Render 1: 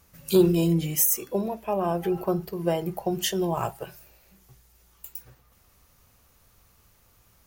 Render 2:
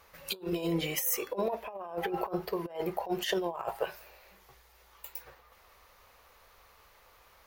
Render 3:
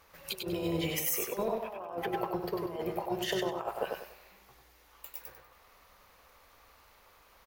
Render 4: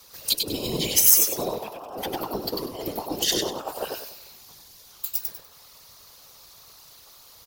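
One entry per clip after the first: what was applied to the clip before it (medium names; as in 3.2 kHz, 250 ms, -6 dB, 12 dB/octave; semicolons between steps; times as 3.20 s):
graphic EQ 125/250/500/1000/2000/4000/8000 Hz -10/-5/+9/+9/+8/+6/-4 dB; compressor with a negative ratio -24 dBFS, ratio -0.5; trim -8 dB
AM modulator 240 Hz, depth 30%; crackle 14 per s -51 dBFS; feedback delay 97 ms, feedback 30%, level -4 dB
whisper effect; resonant high shelf 3.1 kHz +12.5 dB, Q 1.5; Chebyshev shaper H 4 -28 dB, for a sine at -4.5 dBFS; trim +3.5 dB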